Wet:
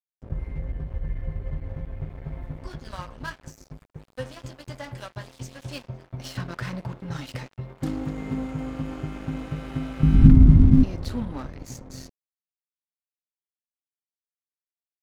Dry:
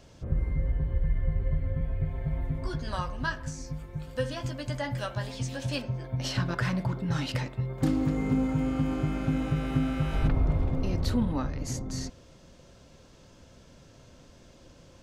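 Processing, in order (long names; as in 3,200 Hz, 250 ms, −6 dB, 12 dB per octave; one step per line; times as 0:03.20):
0:10.03–0:10.84: low shelf with overshoot 360 Hz +13.5 dB, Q 3
dead-zone distortion −37.5 dBFS
level −1.5 dB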